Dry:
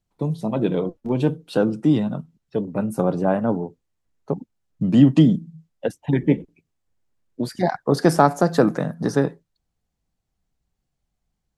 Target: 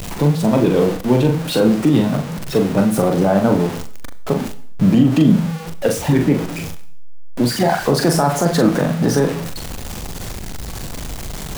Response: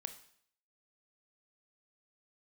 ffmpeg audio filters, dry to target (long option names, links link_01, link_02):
-filter_complex "[0:a]aeval=exprs='val(0)+0.5*0.0398*sgn(val(0))':channel_layout=same,alimiter=limit=-12dB:level=0:latency=1:release=43,asplit=2[link_01][link_02];[1:a]atrim=start_sample=2205,adelay=41[link_03];[link_02][link_03]afir=irnorm=-1:irlink=0,volume=-1.5dB[link_04];[link_01][link_04]amix=inputs=2:normalize=0,volume=6dB"